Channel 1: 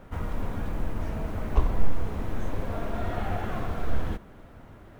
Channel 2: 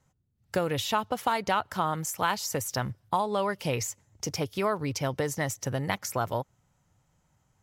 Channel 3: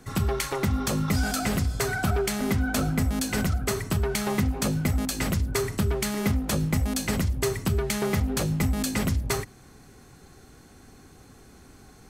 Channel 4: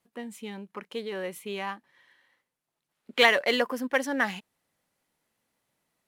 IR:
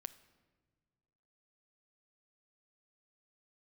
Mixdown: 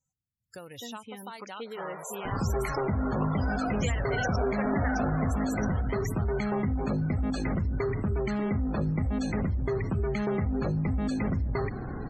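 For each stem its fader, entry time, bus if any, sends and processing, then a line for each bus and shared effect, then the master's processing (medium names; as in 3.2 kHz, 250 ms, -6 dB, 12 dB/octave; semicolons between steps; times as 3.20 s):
-1.5 dB, 1.65 s, send -7.5 dB, high-pass 460 Hz 24 dB/octave
-4.5 dB, 0.00 s, send -15 dB, pre-emphasis filter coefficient 0.8
-5.0 dB, 2.25 s, no send, peaking EQ 14 kHz -13 dB 2.6 oct; level flattener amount 70%
-6.5 dB, 0.65 s, send -10.5 dB, compression 16:1, threshold -26 dBFS, peak gain reduction 13 dB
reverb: on, pre-delay 7 ms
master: loudest bins only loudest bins 64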